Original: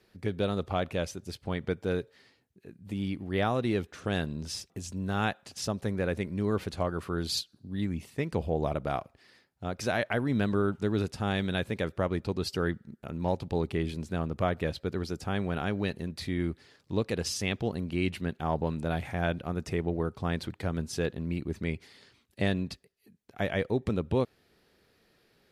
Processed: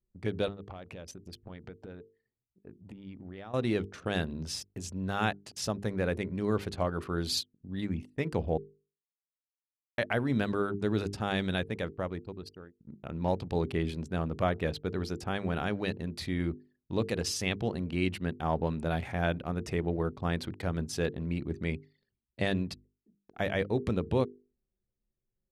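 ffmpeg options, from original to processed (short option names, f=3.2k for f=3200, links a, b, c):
-filter_complex "[0:a]asettb=1/sr,asplit=3[a][b][c];[a]atrim=end=0.484[d];[b]atrim=start=0.48:end=3.54,asetpts=PTS-STARTPTS,afade=t=in:d=0.004:c=qsin,afade=t=out:st=3.056:d=0.004:c=qsin,acompressor=threshold=-39dB:ratio=16:attack=3.2:release=140:knee=1:detection=peak[e];[c]atrim=start=3.536[f];[d][e]acrossfade=d=0.004:c1=hsin:c2=qsin[g];[g][f]acrossfade=d=0.004:c1=qsin:c2=hsin,asplit=4[h][i][j][k];[h]atrim=end=8.58,asetpts=PTS-STARTPTS,afade=t=out:st=8.576:d=0.004:c=hsin[l];[i]atrim=start=8.58:end=9.98,asetpts=PTS-STARTPTS,volume=0[m];[j]atrim=start=9.98:end=12.78,asetpts=PTS-STARTPTS,afade=t=in:d=0.004:c=hsin,afade=t=out:st=1.48:d=1.32[n];[k]atrim=start=12.78,asetpts=PTS-STARTPTS,afade=t=in:d=0.004:c=hsin[o];[l][m][n][o]concat=n=4:v=0:a=1,anlmdn=0.0158,bandreject=f=50:t=h:w=6,bandreject=f=100:t=h:w=6,bandreject=f=150:t=h:w=6,bandreject=f=200:t=h:w=6,bandreject=f=250:t=h:w=6,bandreject=f=300:t=h:w=6,bandreject=f=350:t=h:w=6,bandreject=f=400:t=h:w=6,bandreject=f=450:t=h:w=6"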